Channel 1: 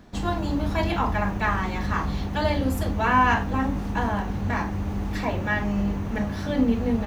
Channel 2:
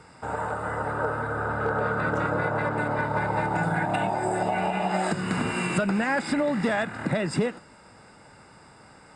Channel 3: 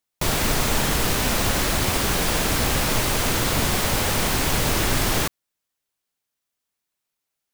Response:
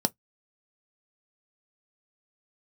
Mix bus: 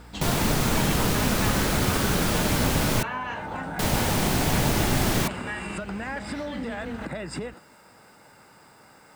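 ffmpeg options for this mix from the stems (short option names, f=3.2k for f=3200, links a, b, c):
-filter_complex "[0:a]equalizer=f=3k:t=o:w=1.6:g=7.5,volume=-4dB[a];[1:a]acrusher=bits=9:mix=0:aa=0.000001,volume=-1dB[b];[2:a]equalizer=f=180:w=0.66:g=8,aeval=exprs='val(0)+0.00891*(sin(2*PI*60*n/s)+sin(2*PI*2*60*n/s)/2+sin(2*PI*3*60*n/s)/3+sin(2*PI*4*60*n/s)/4+sin(2*PI*5*60*n/s)/5)':c=same,volume=-4.5dB,asplit=3[c][d][e];[c]atrim=end=3.03,asetpts=PTS-STARTPTS,afade=t=out:st=3.026:d=0.004:c=hsin[f];[d]atrim=start=3.03:end=3.79,asetpts=PTS-STARTPTS,volume=0[g];[e]atrim=start=3.79,asetpts=PTS-STARTPTS,afade=t=in:d=0.004:c=hsin[h];[f][g][h]concat=n=3:v=0:a=1[i];[a][b]amix=inputs=2:normalize=0,lowshelf=f=140:g=-8.5,acompressor=threshold=-30dB:ratio=5,volume=0dB[j];[i][j]amix=inputs=2:normalize=0"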